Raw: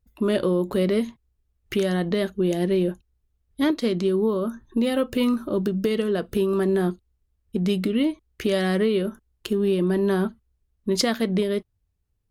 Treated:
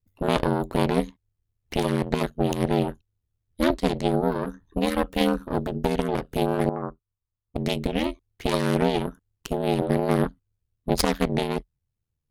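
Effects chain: Chebyshev shaper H 4 -7 dB, 7 -27 dB, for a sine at -8 dBFS; ring modulator 41 Hz; 6.69–7.56 s: four-pole ladder low-pass 1.3 kHz, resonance 60%

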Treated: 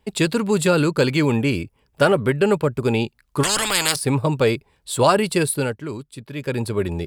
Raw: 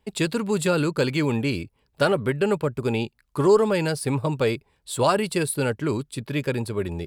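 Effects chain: 1.31–2.14 s: peaking EQ 4.1 kHz -8.5 dB 0.22 oct; 3.43–3.96 s: spectrum-flattening compressor 10:1; 5.50–6.66 s: dip -9.5 dB, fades 0.30 s; trim +4.5 dB

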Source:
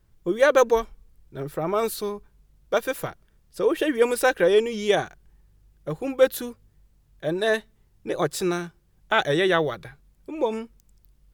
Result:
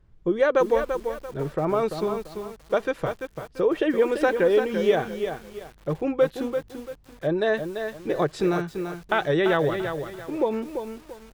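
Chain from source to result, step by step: compression 2:1, threshold -23 dBFS, peak gain reduction 7 dB; tape spacing loss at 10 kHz 21 dB; bit-crushed delay 340 ms, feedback 35%, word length 8-bit, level -7 dB; trim +4 dB

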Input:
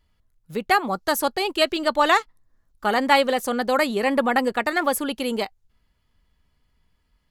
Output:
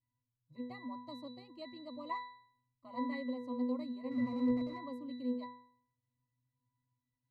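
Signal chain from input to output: static phaser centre 310 Hz, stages 8; 4.11–4.78 s: Schmitt trigger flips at -38 dBFS; pitch-class resonator B, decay 0.59 s; trim +6 dB

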